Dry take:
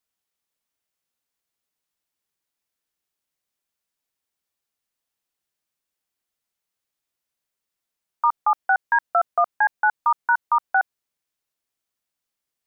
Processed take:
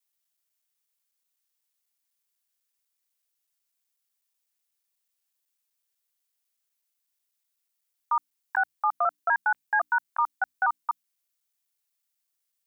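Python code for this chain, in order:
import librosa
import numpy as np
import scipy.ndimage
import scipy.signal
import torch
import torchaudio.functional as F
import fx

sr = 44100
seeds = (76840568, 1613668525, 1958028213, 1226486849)

y = fx.block_reorder(x, sr, ms=124.0, group=4)
y = fx.tilt_eq(y, sr, slope=3.0)
y = fx.hum_notches(y, sr, base_hz=60, count=5)
y = y * librosa.db_to_amplitude(-6.0)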